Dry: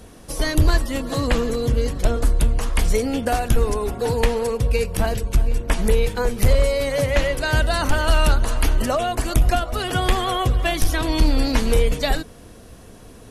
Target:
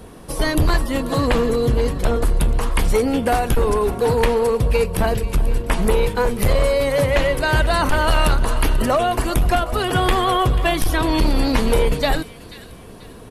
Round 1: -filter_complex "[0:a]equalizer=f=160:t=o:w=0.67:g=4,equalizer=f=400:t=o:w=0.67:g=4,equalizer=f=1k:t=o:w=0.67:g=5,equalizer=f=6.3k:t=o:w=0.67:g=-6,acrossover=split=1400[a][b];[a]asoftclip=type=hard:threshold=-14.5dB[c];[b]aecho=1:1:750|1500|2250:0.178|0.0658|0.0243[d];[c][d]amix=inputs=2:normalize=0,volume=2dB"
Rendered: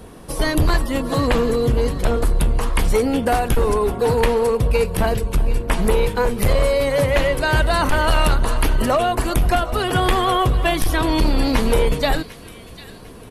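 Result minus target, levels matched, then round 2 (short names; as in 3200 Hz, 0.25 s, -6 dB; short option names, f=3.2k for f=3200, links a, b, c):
echo 0.262 s late
-filter_complex "[0:a]equalizer=f=160:t=o:w=0.67:g=4,equalizer=f=400:t=o:w=0.67:g=4,equalizer=f=1k:t=o:w=0.67:g=5,equalizer=f=6.3k:t=o:w=0.67:g=-6,acrossover=split=1400[a][b];[a]asoftclip=type=hard:threshold=-14.5dB[c];[b]aecho=1:1:488|976|1464:0.178|0.0658|0.0243[d];[c][d]amix=inputs=2:normalize=0,volume=2dB"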